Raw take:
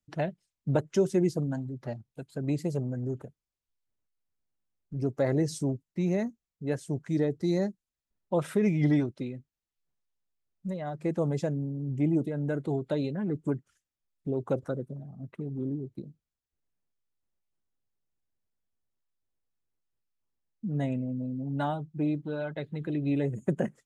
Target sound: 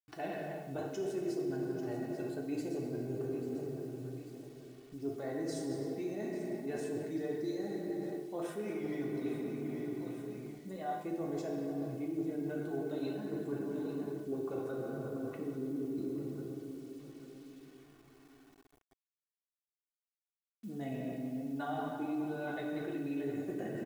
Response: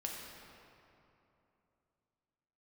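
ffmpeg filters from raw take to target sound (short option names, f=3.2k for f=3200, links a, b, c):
-filter_complex "[0:a]asplit=2[a][b];[b]alimiter=limit=-22dB:level=0:latency=1:release=16,volume=0dB[c];[a][c]amix=inputs=2:normalize=0[d];[1:a]atrim=start_sample=2205[e];[d][e]afir=irnorm=-1:irlink=0,flanger=delay=8.6:depth=3.6:regen=-60:speed=0.67:shape=triangular,lowshelf=f=78:g=-12,aecho=1:1:842|1684|2526:0.141|0.0579|0.0237,areverse,acompressor=threshold=-38dB:ratio=8,areverse,acrusher=bits=10:mix=0:aa=0.000001,aecho=1:1:2.7:0.58,volume=2.5dB"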